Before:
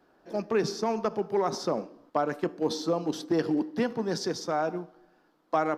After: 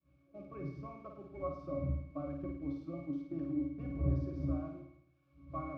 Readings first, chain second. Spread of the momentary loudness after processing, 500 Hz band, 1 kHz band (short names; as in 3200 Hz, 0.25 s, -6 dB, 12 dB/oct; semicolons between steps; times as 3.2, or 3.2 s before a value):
15 LU, -16.0 dB, -17.5 dB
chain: switching spikes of -25 dBFS; wind noise 270 Hz -36 dBFS; HPF 65 Hz; notches 50/100/150 Hz; expander -28 dBFS; LPF 4900 Hz 12 dB/oct; low shelf 290 Hz +6 dB; octave resonator C#, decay 0.28 s; flutter echo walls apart 9.2 m, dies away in 0.64 s